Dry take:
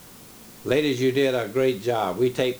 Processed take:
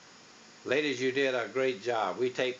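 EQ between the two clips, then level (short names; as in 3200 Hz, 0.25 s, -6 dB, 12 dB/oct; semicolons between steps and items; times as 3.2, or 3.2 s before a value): HPF 350 Hz 6 dB/oct; rippled Chebyshev low-pass 7000 Hz, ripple 6 dB; notch 2200 Hz, Q 19; 0.0 dB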